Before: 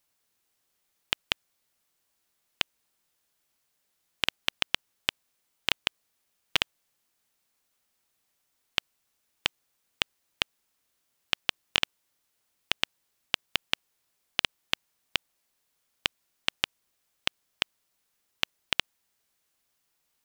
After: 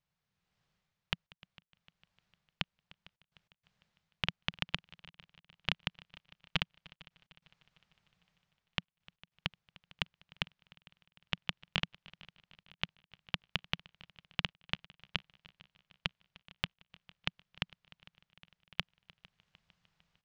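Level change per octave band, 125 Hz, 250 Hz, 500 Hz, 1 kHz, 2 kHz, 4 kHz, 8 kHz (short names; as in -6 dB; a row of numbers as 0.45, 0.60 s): +6.0, 0.0, -8.0, -7.0, -7.5, -9.0, -18.0 dB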